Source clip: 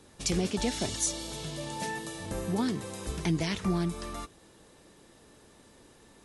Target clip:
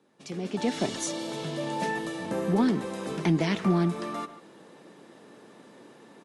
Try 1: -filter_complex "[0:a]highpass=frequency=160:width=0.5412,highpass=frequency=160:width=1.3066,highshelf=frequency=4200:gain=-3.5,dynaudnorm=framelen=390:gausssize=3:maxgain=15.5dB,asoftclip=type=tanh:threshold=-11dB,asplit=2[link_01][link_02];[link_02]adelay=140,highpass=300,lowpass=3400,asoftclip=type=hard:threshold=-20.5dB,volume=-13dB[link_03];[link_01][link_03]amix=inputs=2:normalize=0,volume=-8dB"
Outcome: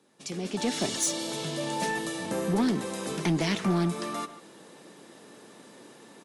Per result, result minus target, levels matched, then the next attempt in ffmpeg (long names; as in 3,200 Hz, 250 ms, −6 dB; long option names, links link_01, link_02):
8,000 Hz band +7.0 dB; soft clipping: distortion +11 dB
-filter_complex "[0:a]highpass=frequency=160:width=0.5412,highpass=frequency=160:width=1.3066,highshelf=frequency=4200:gain=-15,dynaudnorm=framelen=390:gausssize=3:maxgain=15.5dB,asoftclip=type=tanh:threshold=-11dB,asplit=2[link_01][link_02];[link_02]adelay=140,highpass=300,lowpass=3400,asoftclip=type=hard:threshold=-20.5dB,volume=-13dB[link_03];[link_01][link_03]amix=inputs=2:normalize=0,volume=-8dB"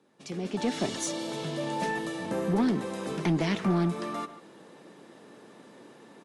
soft clipping: distortion +11 dB
-filter_complex "[0:a]highpass=frequency=160:width=0.5412,highpass=frequency=160:width=1.3066,highshelf=frequency=4200:gain=-15,dynaudnorm=framelen=390:gausssize=3:maxgain=15.5dB,asoftclip=type=tanh:threshold=-4dB,asplit=2[link_01][link_02];[link_02]adelay=140,highpass=300,lowpass=3400,asoftclip=type=hard:threshold=-20.5dB,volume=-13dB[link_03];[link_01][link_03]amix=inputs=2:normalize=0,volume=-8dB"